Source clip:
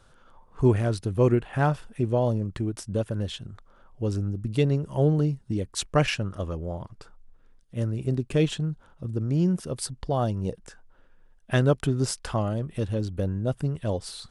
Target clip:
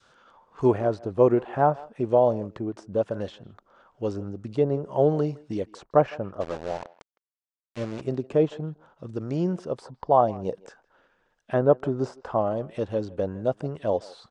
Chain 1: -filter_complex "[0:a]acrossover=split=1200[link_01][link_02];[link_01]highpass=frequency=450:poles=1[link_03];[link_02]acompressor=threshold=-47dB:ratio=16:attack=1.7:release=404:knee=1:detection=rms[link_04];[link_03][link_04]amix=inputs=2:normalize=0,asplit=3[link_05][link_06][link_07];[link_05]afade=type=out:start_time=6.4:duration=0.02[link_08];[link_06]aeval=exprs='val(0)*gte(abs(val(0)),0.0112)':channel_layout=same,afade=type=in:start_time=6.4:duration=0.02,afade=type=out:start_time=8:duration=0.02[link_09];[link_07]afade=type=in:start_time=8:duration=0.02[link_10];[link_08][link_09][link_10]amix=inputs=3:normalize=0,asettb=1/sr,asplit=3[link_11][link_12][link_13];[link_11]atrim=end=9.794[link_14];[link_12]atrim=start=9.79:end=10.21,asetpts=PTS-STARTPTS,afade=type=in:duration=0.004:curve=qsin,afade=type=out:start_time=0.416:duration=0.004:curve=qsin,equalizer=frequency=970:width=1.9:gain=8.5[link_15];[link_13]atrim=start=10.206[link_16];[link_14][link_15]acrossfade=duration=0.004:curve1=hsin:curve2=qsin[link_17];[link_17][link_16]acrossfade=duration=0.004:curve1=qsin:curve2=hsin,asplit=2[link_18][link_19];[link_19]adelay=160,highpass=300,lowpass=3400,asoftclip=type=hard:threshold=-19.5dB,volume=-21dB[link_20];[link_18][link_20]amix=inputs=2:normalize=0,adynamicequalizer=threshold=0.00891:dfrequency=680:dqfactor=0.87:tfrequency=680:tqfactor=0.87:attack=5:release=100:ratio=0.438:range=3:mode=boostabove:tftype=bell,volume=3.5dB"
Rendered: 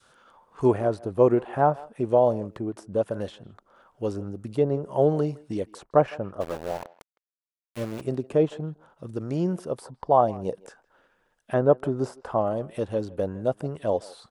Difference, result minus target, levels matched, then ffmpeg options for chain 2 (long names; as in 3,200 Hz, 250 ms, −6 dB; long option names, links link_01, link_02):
8,000 Hz band +4.5 dB
-filter_complex "[0:a]acrossover=split=1200[link_01][link_02];[link_01]highpass=frequency=450:poles=1[link_03];[link_02]acompressor=threshold=-47dB:ratio=16:attack=1.7:release=404:knee=1:detection=rms[link_04];[link_03][link_04]amix=inputs=2:normalize=0,asplit=3[link_05][link_06][link_07];[link_05]afade=type=out:start_time=6.4:duration=0.02[link_08];[link_06]aeval=exprs='val(0)*gte(abs(val(0)),0.0112)':channel_layout=same,afade=type=in:start_time=6.4:duration=0.02,afade=type=out:start_time=8:duration=0.02[link_09];[link_07]afade=type=in:start_time=8:duration=0.02[link_10];[link_08][link_09][link_10]amix=inputs=3:normalize=0,asettb=1/sr,asplit=3[link_11][link_12][link_13];[link_11]atrim=end=9.794[link_14];[link_12]atrim=start=9.79:end=10.21,asetpts=PTS-STARTPTS,afade=type=in:duration=0.004:curve=qsin,afade=type=out:start_time=0.416:duration=0.004:curve=qsin,equalizer=frequency=970:width=1.9:gain=8.5[link_15];[link_13]atrim=start=10.206[link_16];[link_14][link_15]acrossfade=duration=0.004:curve1=hsin:curve2=qsin[link_17];[link_17][link_16]acrossfade=duration=0.004:curve1=qsin:curve2=hsin,asplit=2[link_18][link_19];[link_19]adelay=160,highpass=300,lowpass=3400,asoftclip=type=hard:threshold=-19.5dB,volume=-21dB[link_20];[link_18][link_20]amix=inputs=2:normalize=0,adynamicequalizer=threshold=0.00891:dfrequency=680:dqfactor=0.87:tfrequency=680:tqfactor=0.87:attack=5:release=100:ratio=0.438:range=3:mode=boostabove:tftype=bell,lowpass=frequency=7000:width=0.5412,lowpass=frequency=7000:width=1.3066,volume=3.5dB"